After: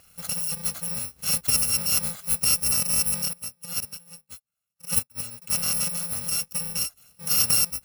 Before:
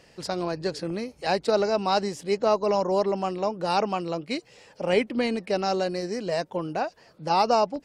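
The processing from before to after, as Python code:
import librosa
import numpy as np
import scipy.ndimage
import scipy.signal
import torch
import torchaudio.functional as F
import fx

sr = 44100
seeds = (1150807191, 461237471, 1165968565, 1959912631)

y = fx.bit_reversed(x, sr, seeds[0], block=128)
y = fx.upward_expand(y, sr, threshold_db=-40.0, expansion=2.5, at=(3.33, 5.42))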